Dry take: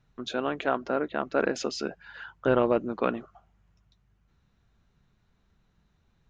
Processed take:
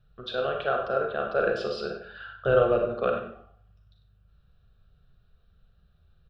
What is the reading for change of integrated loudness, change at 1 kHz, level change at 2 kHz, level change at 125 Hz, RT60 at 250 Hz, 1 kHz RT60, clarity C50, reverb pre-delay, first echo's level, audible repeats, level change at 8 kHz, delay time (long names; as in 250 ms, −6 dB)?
+1.5 dB, +1.0 dB, +1.5 dB, +2.5 dB, 0.55 s, 0.60 s, 4.0 dB, 32 ms, −11.0 dB, 1, can't be measured, 97 ms